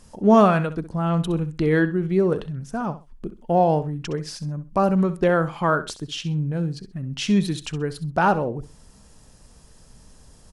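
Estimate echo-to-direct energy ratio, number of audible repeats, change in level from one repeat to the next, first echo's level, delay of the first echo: -14.0 dB, 2, -13.0 dB, -14.0 dB, 65 ms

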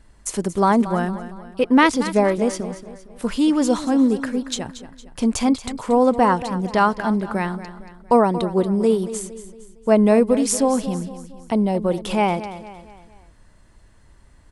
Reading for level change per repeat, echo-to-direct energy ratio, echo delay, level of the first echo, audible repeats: -7.0 dB, -12.5 dB, 0.23 s, -13.5 dB, 4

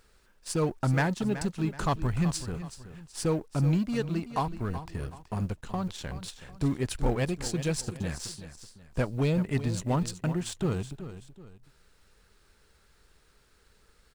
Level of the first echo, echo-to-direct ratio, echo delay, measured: -12.5 dB, -12.0 dB, 0.376 s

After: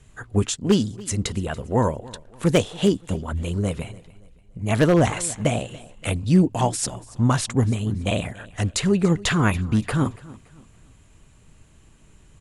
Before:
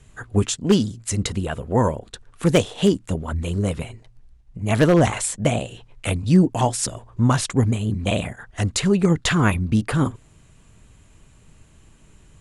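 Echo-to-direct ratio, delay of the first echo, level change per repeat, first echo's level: -20.0 dB, 0.285 s, -9.0 dB, -20.5 dB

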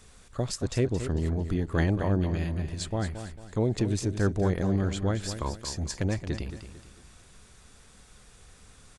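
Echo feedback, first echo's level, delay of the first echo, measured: 36%, -10.0 dB, 0.224 s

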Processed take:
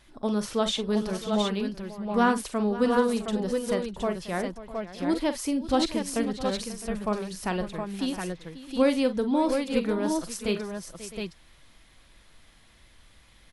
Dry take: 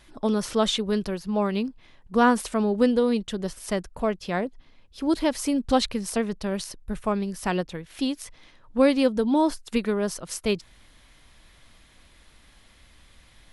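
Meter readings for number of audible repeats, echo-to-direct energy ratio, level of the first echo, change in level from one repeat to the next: 4, -3.5 dB, -11.5 dB, no steady repeat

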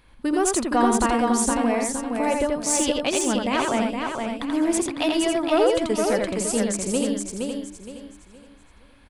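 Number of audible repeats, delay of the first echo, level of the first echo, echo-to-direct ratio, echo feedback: 7, 84 ms, -3.5 dB, 0.0 dB, no steady repeat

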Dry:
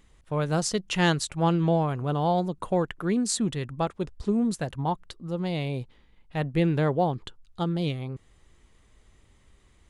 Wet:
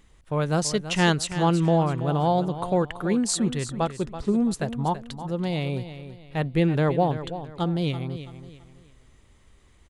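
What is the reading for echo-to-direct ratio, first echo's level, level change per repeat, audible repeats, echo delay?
-11.5 dB, -12.0 dB, -9.5 dB, 3, 0.331 s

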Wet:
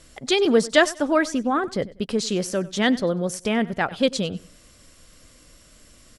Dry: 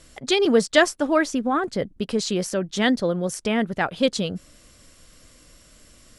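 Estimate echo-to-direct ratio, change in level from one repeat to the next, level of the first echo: -19.0 dB, -11.0 dB, -19.5 dB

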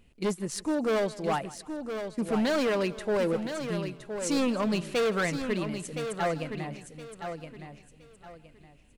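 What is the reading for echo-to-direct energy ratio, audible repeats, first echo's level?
-7.5 dB, 6, -19.5 dB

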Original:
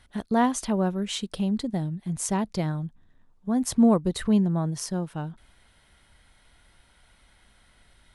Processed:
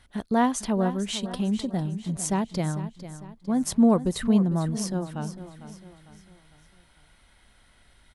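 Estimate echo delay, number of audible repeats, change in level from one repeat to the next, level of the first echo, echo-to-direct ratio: 0.451 s, 4, -7.0 dB, -13.0 dB, -12.0 dB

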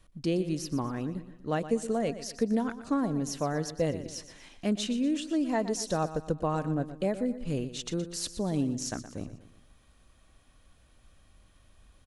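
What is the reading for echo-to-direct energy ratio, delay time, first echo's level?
-12.0 dB, 0.12 s, -13.0 dB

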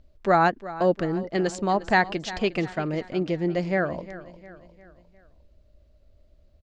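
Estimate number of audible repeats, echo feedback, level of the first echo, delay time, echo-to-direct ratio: 3, 48%, -16.0 dB, 0.354 s, -15.0 dB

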